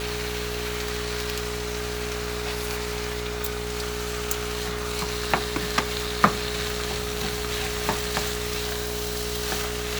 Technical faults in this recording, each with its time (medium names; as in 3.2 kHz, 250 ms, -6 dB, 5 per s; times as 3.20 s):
buzz 60 Hz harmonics 16 -34 dBFS
whine 420 Hz -33 dBFS